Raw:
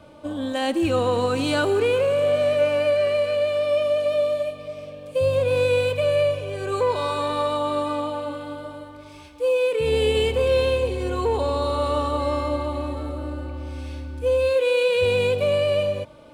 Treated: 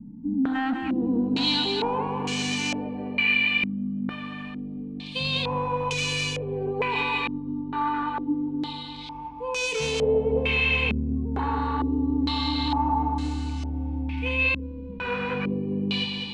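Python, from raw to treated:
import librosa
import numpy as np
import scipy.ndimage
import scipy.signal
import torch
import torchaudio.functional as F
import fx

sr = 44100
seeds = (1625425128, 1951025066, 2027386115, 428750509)

p1 = scipy.signal.sosfilt(scipy.signal.cheby1(2, 1.0, [380.0, 880.0], 'bandstop', fs=sr, output='sos'), x)
p2 = fx.over_compress(p1, sr, threshold_db=-29.0, ratio=-0.5)
p3 = p1 + F.gain(torch.from_numpy(p2), 1.5).numpy()
p4 = fx.fixed_phaser(p3, sr, hz=350.0, stages=6)
p5 = np.clip(10.0 ** (25.0 / 20.0) * p4, -1.0, 1.0) / 10.0 ** (25.0 / 20.0)
p6 = p5 + fx.echo_feedback(p5, sr, ms=201, feedback_pct=59, wet_db=-6.5, dry=0)
y = fx.filter_held_lowpass(p6, sr, hz=2.2, low_hz=220.0, high_hz=6300.0)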